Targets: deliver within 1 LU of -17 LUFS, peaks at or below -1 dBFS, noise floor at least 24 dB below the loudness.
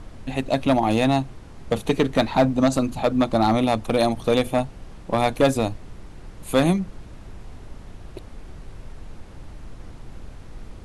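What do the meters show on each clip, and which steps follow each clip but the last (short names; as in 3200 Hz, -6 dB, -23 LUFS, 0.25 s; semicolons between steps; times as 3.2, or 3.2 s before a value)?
clipped 0.4%; flat tops at -10.5 dBFS; noise floor -42 dBFS; noise floor target -46 dBFS; loudness -22.0 LUFS; peak -10.5 dBFS; loudness target -17.0 LUFS
-> clip repair -10.5 dBFS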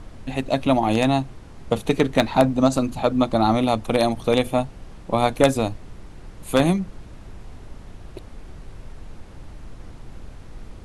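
clipped 0.0%; noise floor -42 dBFS; noise floor target -45 dBFS
-> noise print and reduce 6 dB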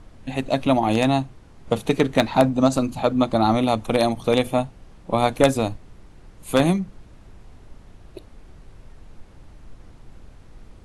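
noise floor -48 dBFS; loudness -21.0 LUFS; peak -1.5 dBFS; loudness target -17.0 LUFS
-> gain +4 dB; limiter -1 dBFS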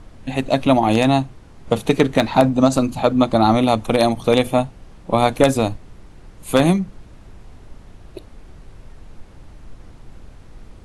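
loudness -17.5 LUFS; peak -1.0 dBFS; noise floor -44 dBFS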